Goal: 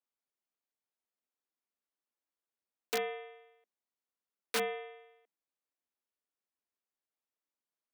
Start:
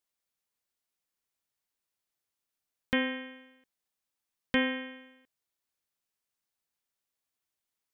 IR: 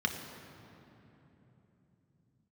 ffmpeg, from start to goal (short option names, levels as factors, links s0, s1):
-af "highshelf=f=2100:g=-11.5,aeval=exprs='(mod(10.6*val(0)+1,2)-1)/10.6':c=same,afreqshift=200,volume=0.668"